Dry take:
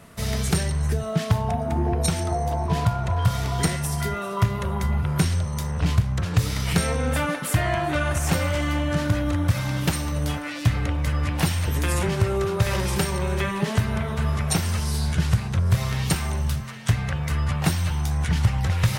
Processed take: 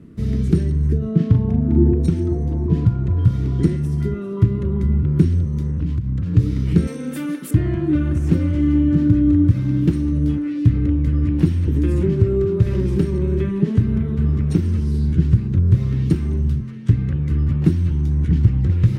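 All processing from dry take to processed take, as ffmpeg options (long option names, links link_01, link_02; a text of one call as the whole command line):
ffmpeg -i in.wav -filter_complex "[0:a]asettb=1/sr,asplit=3[link_01][link_02][link_03];[link_01]atrim=end=0.984[link_04];[link_02]atrim=start=0.98:end=1.92,asetpts=PTS-STARTPTS,afade=type=in:duration=0.004:curve=qsin,afade=type=out:start_time=0.936:duration=0.004:curve=qsin,bandreject=frequency=7200:width=25,asplit=2[link_05][link_06];[link_06]adelay=41,volume=-5dB[link_07];[link_05][link_07]amix=inputs=2:normalize=0,atrim=end_sample=41454,adynamicsmooth=sensitivity=7:basefreq=4200[link_08];[link_03]atrim=start=1.916[link_09];[link_04][link_08]acrossfade=duration=0.004:curve1=hsin:curve2=qsin[link_10];[link_10][link_09]acrossfade=duration=0.004:curve1=qsin:curve2=hsin,asettb=1/sr,asplit=3[link_11][link_12][link_13];[link_11]atrim=end=5.704[link_14];[link_12]atrim=start=5.7:end=6.35,asetpts=PTS-STARTPTS,afade=type=in:duration=0.004:curve=qsin,afade=type=out:start_time=0.646:duration=0.004:curve=qsin,equalizer=frequency=360:width_type=o:width=0.39:gain=-12,acompressor=threshold=-23dB:ratio=6:attack=3.2:release=140:knee=1:detection=peak[link_15];[link_13]atrim=start=6.346[link_16];[link_14][link_15]acrossfade=duration=0.004:curve1=hsin:curve2=qsin[link_17];[link_17][link_16]acrossfade=duration=0.004:curve1=qsin:curve2=hsin,asettb=1/sr,asplit=3[link_18][link_19][link_20];[link_18]atrim=end=6.874[link_21];[link_19]atrim=start=6.87:end=7.51,asetpts=PTS-STARTPTS,afade=type=in:duration=0.004:curve=qsin,afade=type=out:start_time=0.636:duration=0.004:curve=qsin,highpass=frequency=130:width=0.5412,highpass=frequency=130:width=1.3066,aemphasis=mode=production:type=riaa[link_22];[link_20]atrim=start=7.506[link_23];[link_21][link_22]acrossfade=duration=0.004:curve1=hsin:curve2=qsin[link_24];[link_24][link_23]acrossfade=duration=0.004:curve1=qsin:curve2=hsin,lowpass=frequency=2500:poles=1,lowshelf=frequency=480:width_type=q:width=3:gain=14,volume=-9dB" out.wav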